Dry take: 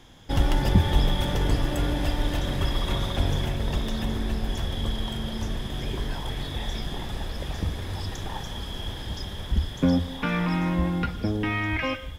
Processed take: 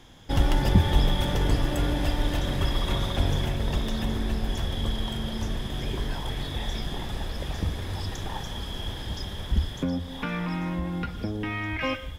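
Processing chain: 9.71–11.81 s: compression 2:1, threshold -30 dBFS, peak gain reduction 7.5 dB

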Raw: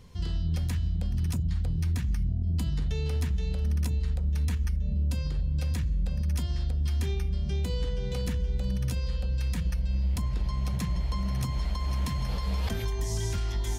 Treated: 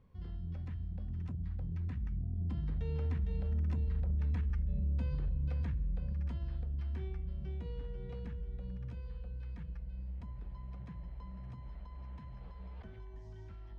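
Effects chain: Doppler pass-by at 4.26 s, 12 m/s, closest 5 m; low-pass 1.8 kHz 12 dB/octave; in parallel at +1 dB: compression, threshold -44 dBFS, peak gain reduction 17.5 dB; on the sum: peak limiter -29.5 dBFS, peak gain reduction 8.5 dB; trim +1 dB

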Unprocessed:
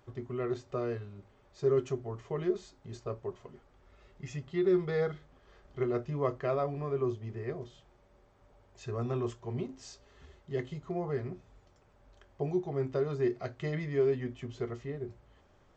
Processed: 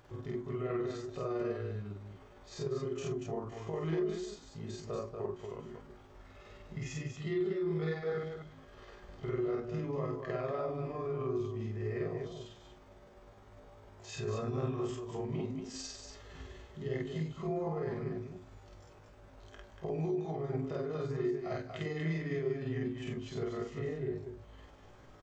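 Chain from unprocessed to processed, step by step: peak limiter -29 dBFS, peak gain reduction 11.5 dB; compression 1.5:1, threshold -50 dBFS, peak gain reduction 6.5 dB; granular stretch 1.6×, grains 101 ms; loudspeakers at several distances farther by 17 m 0 dB, 81 m -5 dB; trim +5 dB

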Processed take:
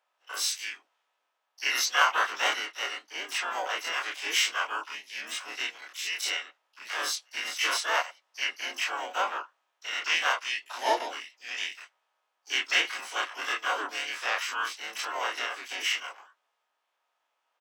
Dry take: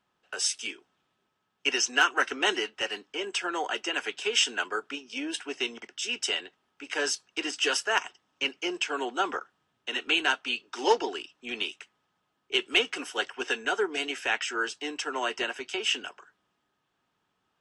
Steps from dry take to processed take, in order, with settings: every event in the spectrogram widened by 60 ms; ladder high-pass 600 Hz, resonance 25%; harmony voices -7 st -11 dB, -5 st -3 dB, +12 st -11 dB; trim -1.5 dB

